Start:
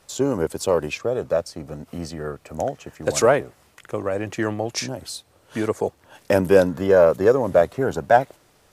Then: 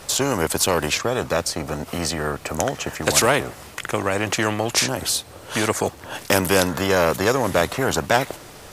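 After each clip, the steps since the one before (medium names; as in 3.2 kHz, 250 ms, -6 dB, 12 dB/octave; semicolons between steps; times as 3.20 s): spectrum-flattening compressor 2:1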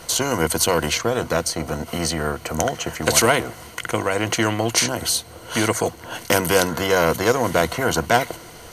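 rippled EQ curve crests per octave 1.9, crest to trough 8 dB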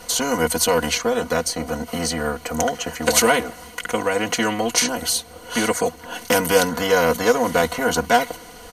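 comb 4.1 ms, depth 84%; trim -2.5 dB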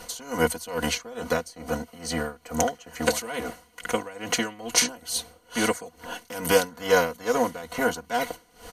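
logarithmic tremolo 2.3 Hz, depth 19 dB; trim -1.5 dB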